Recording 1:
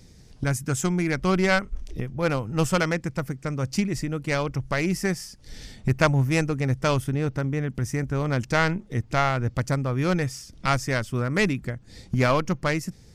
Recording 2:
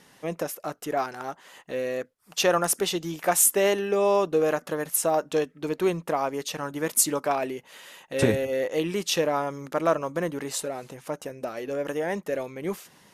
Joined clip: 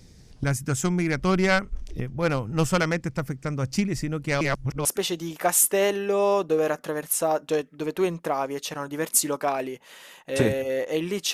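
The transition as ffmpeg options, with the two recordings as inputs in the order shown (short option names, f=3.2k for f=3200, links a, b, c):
-filter_complex "[0:a]apad=whole_dur=11.33,atrim=end=11.33,asplit=2[a][b];[a]atrim=end=4.412[c];[b]atrim=start=4.408:end=4.852,asetpts=PTS-STARTPTS,areverse[d];[1:a]atrim=start=2.678:end=9.16[e];[c][d]acrossfade=d=0.004:c1=hsin:c2=hsin[f];[f][e]acrossfade=d=0.004:c1=hsin:c2=hsin"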